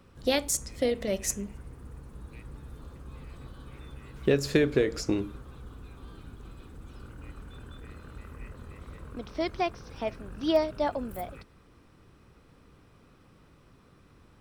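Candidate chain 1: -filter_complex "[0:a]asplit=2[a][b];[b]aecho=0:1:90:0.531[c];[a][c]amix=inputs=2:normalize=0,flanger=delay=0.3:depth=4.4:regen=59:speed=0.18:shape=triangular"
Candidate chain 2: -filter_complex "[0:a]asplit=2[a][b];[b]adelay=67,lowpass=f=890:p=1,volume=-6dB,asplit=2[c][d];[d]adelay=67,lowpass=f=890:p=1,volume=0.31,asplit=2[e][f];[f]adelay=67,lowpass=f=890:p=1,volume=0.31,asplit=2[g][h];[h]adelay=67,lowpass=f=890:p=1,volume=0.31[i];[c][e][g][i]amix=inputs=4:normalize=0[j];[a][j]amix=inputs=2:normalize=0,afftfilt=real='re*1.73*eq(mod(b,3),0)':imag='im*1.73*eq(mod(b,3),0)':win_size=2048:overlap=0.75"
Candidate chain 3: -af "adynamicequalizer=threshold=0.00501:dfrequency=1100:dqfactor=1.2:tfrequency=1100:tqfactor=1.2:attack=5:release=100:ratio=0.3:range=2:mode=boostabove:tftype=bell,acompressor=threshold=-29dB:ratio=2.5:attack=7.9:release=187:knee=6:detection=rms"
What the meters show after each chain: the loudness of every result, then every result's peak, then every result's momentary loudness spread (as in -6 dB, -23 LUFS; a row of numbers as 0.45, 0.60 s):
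-33.0, -31.0, -37.5 LUFS; -15.5, -13.0, -18.0 dBFS; 20, 20, 16 LU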